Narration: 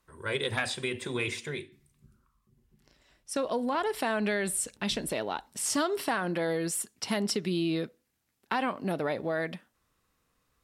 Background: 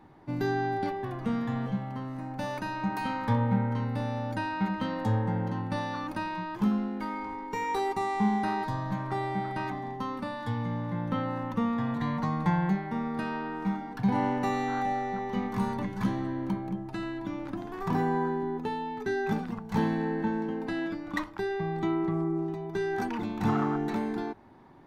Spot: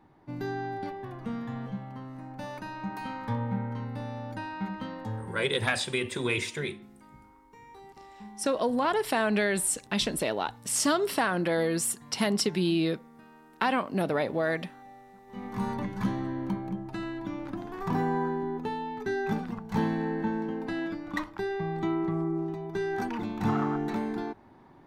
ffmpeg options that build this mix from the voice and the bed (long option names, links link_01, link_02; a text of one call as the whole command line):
ffmpeg -i stem1.wav -i stem2.wav -filter_complex "[0:a]adelay=5100,volume=3dB[link_01];[1:a]volume=15dB,afade=type=out:start_time=4.77:duration=0.91:silence=0.16788,afade=type=in:start_time=15.26:duration=0.44:silence=0.1[link_02];[link_01][link_02]amix=inputs=2:normalize=0" out.wav